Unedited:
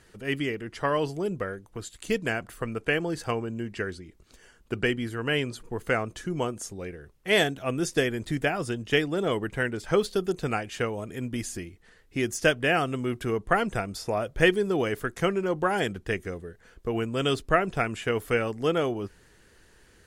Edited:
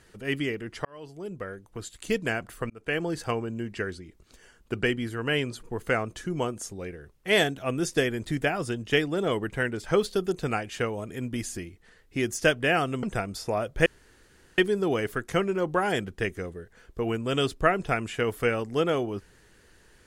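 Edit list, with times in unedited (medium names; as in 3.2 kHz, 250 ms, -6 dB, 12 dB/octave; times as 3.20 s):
0.85–1.85 s: fade in
2.70–3.02 s: fade in
13.03–13.63 s: delete
14.46 s: insert room tone 0.72 s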